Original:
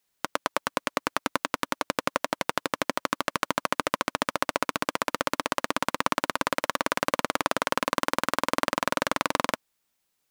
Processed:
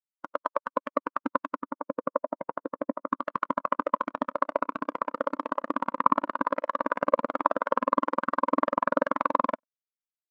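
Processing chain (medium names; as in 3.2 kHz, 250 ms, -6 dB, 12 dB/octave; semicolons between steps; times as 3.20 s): 1.61–3.07 s: treble shelf 2.8 kHz -10.5 dB; delay 96 ms -23 dB; spectral contrast expander 2.5:1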